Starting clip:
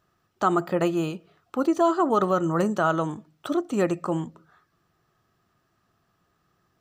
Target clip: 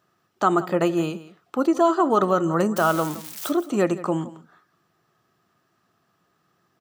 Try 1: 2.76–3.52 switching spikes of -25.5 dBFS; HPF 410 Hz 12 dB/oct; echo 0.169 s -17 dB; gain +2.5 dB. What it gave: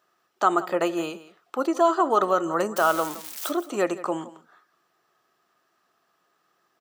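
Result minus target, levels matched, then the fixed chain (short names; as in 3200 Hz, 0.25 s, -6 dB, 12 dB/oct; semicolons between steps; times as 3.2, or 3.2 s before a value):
125 Hz band -11.5 dB
2.76–3.52 switching spikes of -25.5 dBFS; HPF 140 Hz 12 dB/oct; echo 0.169 s -17 dB; gain +2.5 dB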